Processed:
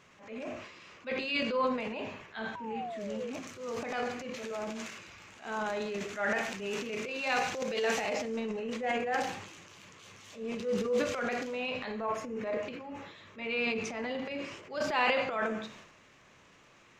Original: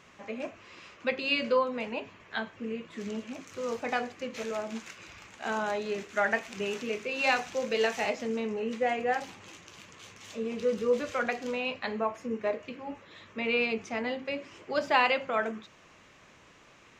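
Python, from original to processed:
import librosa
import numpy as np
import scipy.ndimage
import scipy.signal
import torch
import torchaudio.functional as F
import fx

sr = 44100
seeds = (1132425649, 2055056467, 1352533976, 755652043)

y = fx.rev_gated(x, sr, seeds[0], gate_ms=240, shape='falling', drr_db=9.0)
y = fx.spec_paint(y, sr, seeds[1], shape='fall', start_s=2.55, length_s=0.76, low_hz=460.0, high_hz=1000.0, level_db=-37.0)
y = fx.transient(y, sr, attack_db=-8, sustain_db=9)
y = F.gain(torch.from_numpy(y), -3.5).numpy()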